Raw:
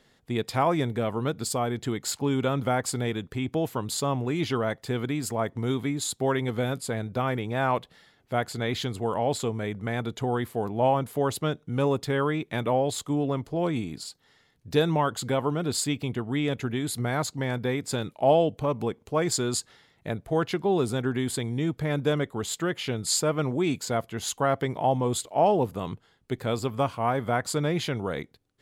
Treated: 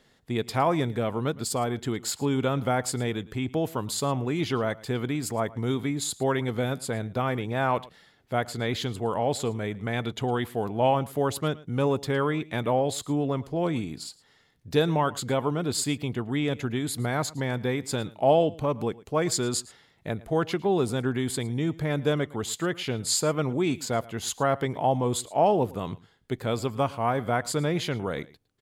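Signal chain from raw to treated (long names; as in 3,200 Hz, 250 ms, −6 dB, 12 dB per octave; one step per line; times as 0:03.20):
0:09.92–0:10.96: dynamic equaliser 2,900 Hz, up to +6 dB, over −48 dBFS, Q 1.4
on a send: single-tap delay 111 ms −21 dB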